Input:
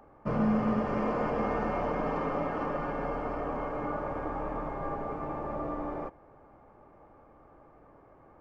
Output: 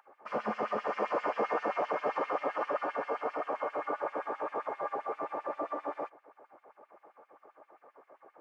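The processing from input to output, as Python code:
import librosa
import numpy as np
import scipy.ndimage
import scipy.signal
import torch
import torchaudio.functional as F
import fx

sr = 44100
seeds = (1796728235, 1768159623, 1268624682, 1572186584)

y = fx.filter_lfo_highpass(x, sr, shape='sine', hz=7.6, low_hz=390.0, high_hz=3000.0, q=1.6)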